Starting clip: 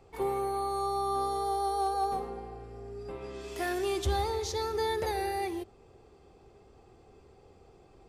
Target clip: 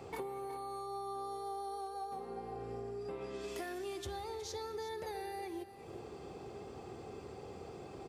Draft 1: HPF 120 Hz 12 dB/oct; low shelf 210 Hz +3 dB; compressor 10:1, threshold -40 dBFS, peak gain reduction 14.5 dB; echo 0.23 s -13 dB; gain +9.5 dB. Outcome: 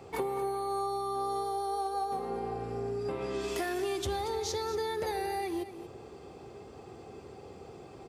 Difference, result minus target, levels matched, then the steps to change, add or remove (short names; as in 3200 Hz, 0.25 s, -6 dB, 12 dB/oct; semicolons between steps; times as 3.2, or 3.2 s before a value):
compressor: peak gain reduction -9 dB; echo 0.136 s early
change: compressor 10:1, threshold -50 dBFS, peak gain reduction 23.5 dB; change: echo 0.366 s -13 dB